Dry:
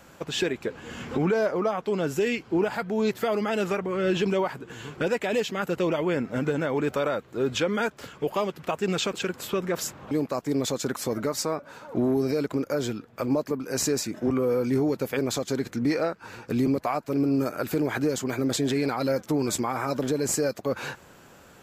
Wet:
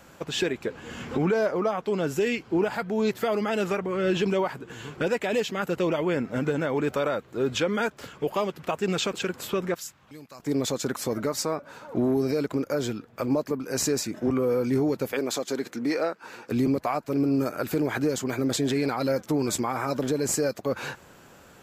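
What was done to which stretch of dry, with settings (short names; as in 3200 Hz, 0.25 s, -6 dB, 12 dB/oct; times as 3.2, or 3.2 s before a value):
9.74–10.4 passive tone stack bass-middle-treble 5-5-5
15.12–16.52 HPF 260 Hz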